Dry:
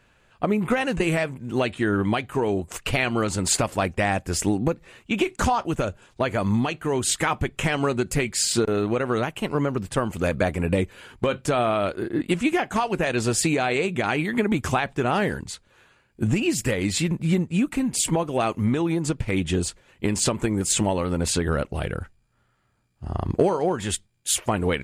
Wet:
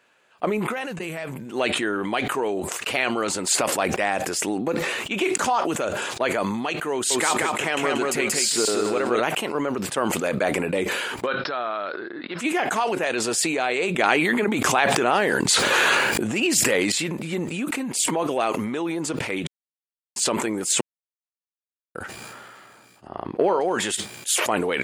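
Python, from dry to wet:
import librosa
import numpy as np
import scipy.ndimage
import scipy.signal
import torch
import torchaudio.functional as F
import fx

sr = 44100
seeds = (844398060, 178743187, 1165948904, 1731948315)

y = fx.spec_box(x, sr, start_s=0.71, length_s=0.75, low_hz=220.0, high_hz=11000.0, gain_db=-8)
y = fx.echo_feedback(y, sr, ms=183, feedback_pct=23, wet_db=-3.5, at=(6.92, 9.2))
y = fx.cheby_ripple(y, sr, hz=5400.0, ripple_db=9, at=(11.25, 12.38), fade=0.02)
y = fx.env_flatten(y, sr, amount_pct=100, at=(13.98, 16.92))
y = fx.moving_average(y, sr, points=6, at=(23.06, 23.6), fade=0.02)
y = fx.edit(y, sr, fx.silence(start_s=19.47, length_s=0.69),
    fx.silence(start_s=20.81, length_s=1.14), tone=tone)
y = scipy.signal.sosfilt(scipy.signal.butter(2, 350.0, 'highpass', fs=sr, output='sos'), y)
y = fx.sustainer(y, sr, db_per_s=23.0)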